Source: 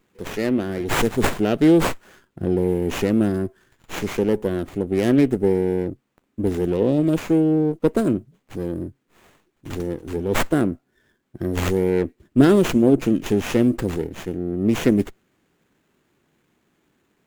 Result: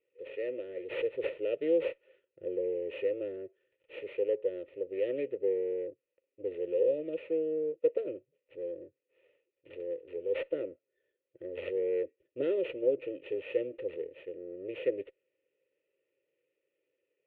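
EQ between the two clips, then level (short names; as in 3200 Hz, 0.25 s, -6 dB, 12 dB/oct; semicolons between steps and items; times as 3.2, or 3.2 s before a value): running mean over 6 samples; vowel filter e; fixed phaser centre 1100 Hz, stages 8; 0.0 dB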